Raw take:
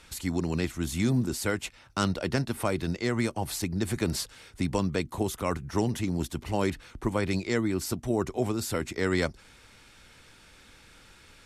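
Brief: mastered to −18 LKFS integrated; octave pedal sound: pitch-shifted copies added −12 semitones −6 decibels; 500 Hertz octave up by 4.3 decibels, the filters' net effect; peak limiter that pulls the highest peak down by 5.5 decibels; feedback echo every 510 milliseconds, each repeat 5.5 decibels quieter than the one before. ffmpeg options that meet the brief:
ffmpeg -i in.wav -filter_complex "[0:a]equalizer=frequency=500:width_type=o:gain=5.5,alimiter=limit=-16dB:level=0:latency=1,aecho=1:1:510|1020|1530|2040|2550|3060|3570:0.531|0.281|0.149|0.079|0.0419|0.0222|0.0118,asplit=2[link_01][link_02];[link_02]asetrate=22050,aresample=44100,atempo=2,volume=-6dB[link_03];[link_01][link_03]amix=inputs=2:normalize=0,volume=9.5dB" out.wav

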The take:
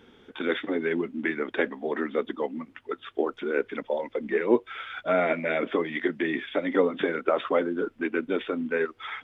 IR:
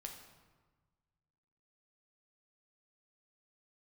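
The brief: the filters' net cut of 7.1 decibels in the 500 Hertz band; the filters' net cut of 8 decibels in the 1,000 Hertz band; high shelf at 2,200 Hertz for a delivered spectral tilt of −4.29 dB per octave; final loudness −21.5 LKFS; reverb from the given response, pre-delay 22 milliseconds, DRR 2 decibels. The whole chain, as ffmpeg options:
-filter_complex "[0:a]equalizer=frequency=500:width_type=o:gain=-7,equalizer=frequency=1000:width_type=o:gain=-7.5,highshelf=frequency=2200:gain=-7.5,asplit=2[link_01][link_02];[1:a]atrim=start_sample=2205,adelay=22[link_03];[link_02][link_03]afir=irnorm=-1:irlink=0,volume=2dB[link_04];[link_01][link_04]amix=inputs=2:normalize=0,volume=10dB"

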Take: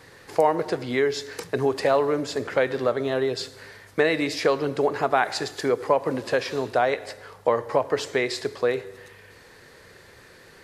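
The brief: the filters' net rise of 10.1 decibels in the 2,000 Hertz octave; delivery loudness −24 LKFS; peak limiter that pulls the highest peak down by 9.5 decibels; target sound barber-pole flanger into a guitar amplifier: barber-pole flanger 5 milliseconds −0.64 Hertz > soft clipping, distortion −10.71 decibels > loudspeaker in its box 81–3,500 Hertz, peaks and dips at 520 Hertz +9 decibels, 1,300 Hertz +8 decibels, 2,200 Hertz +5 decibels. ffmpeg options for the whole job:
ffmpeg -i in.wav -filter_complex "[0:a]equalizer=frequency=2000:width_type=o:gain=8,alimiter=limit=-13dB:level=0:latency=1,asplit=2[link_01][link_02];[link_02]adelay=5,afreqshift=-0.64[link_03];[link_01][link_03]amix=inputs=2:normalize=1,asoftclip=threshold=-25dB,highpass=81,equalizer=frequency=520:width_type=q:width=4:gain=9,equalizer=frequency=1300:width_type=q:width=4:gain=8,equalizer=frequency=2200:width_type=q:width=4:gain=5,lowpass=frequency=3500:width=0.5412,lowpass=frequency=3500:width=1.3066,volume=4dB" out.wav

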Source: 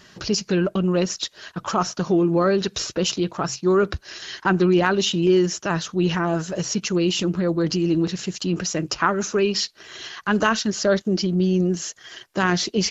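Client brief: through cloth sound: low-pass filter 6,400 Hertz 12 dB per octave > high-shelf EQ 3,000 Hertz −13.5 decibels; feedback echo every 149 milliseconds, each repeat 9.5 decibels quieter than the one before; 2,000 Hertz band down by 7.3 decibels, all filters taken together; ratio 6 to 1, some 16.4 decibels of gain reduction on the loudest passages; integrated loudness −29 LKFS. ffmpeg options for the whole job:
ffmpeg -i in.wav -af "equalizer=frequency=2000:width_type=o:gain=-6,acompressor=threshold=-33dB:ratio=6,lowpass=6400,highshelf=frequency=3000:gain=-13.5,aecho=1:1:149|298|447|596:0.335|0.111|0.0365|0.012,volume=8dB" out.wav

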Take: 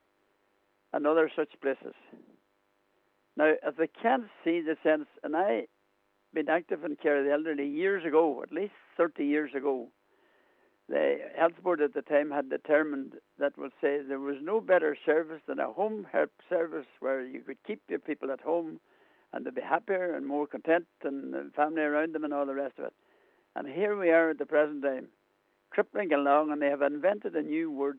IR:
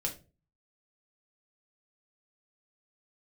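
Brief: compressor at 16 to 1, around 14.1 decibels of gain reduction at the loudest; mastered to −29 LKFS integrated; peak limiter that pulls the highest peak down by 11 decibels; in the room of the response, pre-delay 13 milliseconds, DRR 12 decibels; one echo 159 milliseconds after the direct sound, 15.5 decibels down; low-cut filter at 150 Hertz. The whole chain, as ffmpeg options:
-filter_complex "[0:a]highpass=150,acompressor=threshold=-33dB:ratio=16,alimiter=level_in=7dB:limit=-24dB:level=0:latency=1,volume=-7dB,aecho=1:1:159:0.168,asplit=2[link_01][link_02];[1:a]atrim=start_sample=2205,adelay=13[link_03];[link_02][link_03]afir=irnorm=-1:irlink=0,volume=-14.5dB[link_04];[link_01][link_04]amix=inputs=2:normalize=0,volume=12.5dB"

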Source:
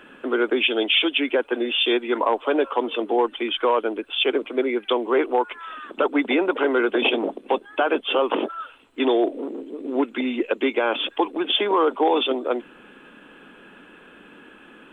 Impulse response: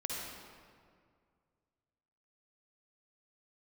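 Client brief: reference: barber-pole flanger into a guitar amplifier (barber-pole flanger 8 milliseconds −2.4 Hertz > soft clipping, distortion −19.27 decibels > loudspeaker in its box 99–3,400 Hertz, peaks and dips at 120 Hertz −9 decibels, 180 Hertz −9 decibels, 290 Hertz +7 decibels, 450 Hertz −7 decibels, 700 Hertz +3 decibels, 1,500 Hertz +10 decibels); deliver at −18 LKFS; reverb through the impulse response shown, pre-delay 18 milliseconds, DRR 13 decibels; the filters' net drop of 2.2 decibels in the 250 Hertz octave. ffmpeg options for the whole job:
-filter_complex "[0:a]equalizer=frequency=250:width_type=o:gain=-6.5,asplit=2[link_01][link_02];[1:a]atrim=start_sample=2205,adelay=18[link_03];[link_02][link_03]afir=irnorm=-1:irlink=0,volume=-15.5dB[link_04];[link_01][link_04]amix=inputs=2:normalize=0,asplit=2[link_05][link_06];[link_06]adelay=8,afreqshift=-2.4[link_07];[link_05][link_07]amix=inputs=2:normalize=1,asoftclip=threshold=-15.5dB,highpass=99,equalizer=frequency=120:width_type=q:width=4:gain=-9,equalizer=frequency=180:width_type=q:width=4:gain=-9,equalizer=frequency=290:width_type=q:width=4:gain=7,equalizer=frequency=450:width_type=q:width=4:gain=-7,equalizer=frequency=700:width_type=q:width=4:gain=3,equalizer=frequency=1500:width_type=q:width=4:gain=10,lowpass=frequency=3400:width=0.5412,lowpass=frequency=3400:width=1.3066,volume=8.5dB"

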